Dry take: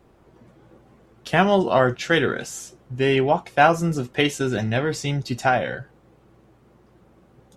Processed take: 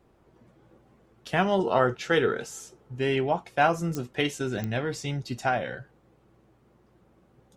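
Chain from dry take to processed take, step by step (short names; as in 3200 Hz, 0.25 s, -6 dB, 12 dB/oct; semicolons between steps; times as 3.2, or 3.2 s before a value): 1.59–2.98 small resonant body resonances 440/870/1300 Hz, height 9 dB; pops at 3.95/4.64, -11 dBFS; gain -6.5 dB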